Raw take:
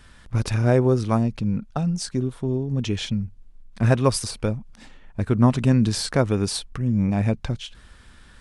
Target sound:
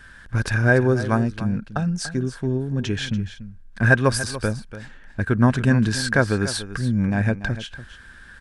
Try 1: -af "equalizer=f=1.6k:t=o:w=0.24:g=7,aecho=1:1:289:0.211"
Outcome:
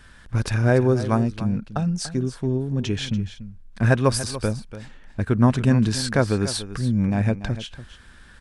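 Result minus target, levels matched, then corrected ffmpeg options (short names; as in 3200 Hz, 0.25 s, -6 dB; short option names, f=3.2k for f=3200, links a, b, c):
2000 Hz band -7.5 dB
-af "equalizer=f=1.6k:t=o:w=0.24:g=18,aecho=1:1:289:0.211"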